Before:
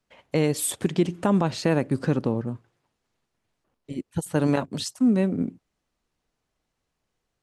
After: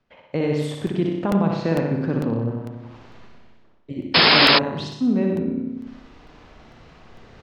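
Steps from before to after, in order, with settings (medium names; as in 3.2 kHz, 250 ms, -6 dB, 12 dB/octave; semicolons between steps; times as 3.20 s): distance through air 220 m; feedback delay 95 ms, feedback 29%, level -7 dB; reverse; upward compressor, threshold -21 dBFS; reverse; flutter echo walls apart 10.4 m, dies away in 0.79 s; painted sound noise, 4.14–4.59 s, 220–5300 Hz -13 dBFS; crackling interface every 0.45 s, samples 64, repeat, from 0.87 s; trim -1 dB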